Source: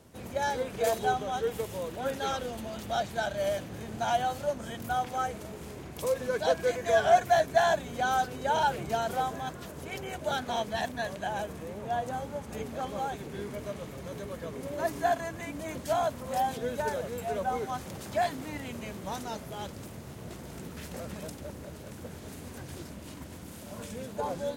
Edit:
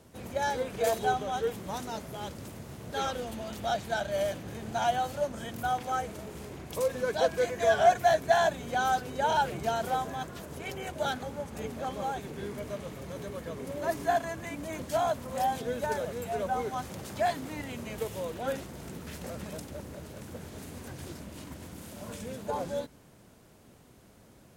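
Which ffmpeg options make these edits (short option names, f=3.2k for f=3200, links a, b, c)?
-filter_complex "[0:a]asplit=6[a][b][c][d][e][f];[a]atrim=end=1.562[g];[b]atrim=start=18.938:end=20.312[h];[c]atrim=start=2.188:end=10.492[i];[d]atrim=start=12.188:end=18.942[j];[e]atrim=start=1.558:end=2.192[k];[f]atrim=start=20.308[l];[g][h]acrossfade=d=0.004:c1=hsin:c2=hsin[m];[m][i]acrossfade=d=0.004:c1=hsin:c2=hsin[n];[n][j]acrossfade=d=0.004:c1=hsin:c2=hsin[o];[o][k]acrossfade=d=0.004:c1=hsin:c2=hsin[p];[p][l]acrossfade=d=0.004:c1=hsin:c2=hsin"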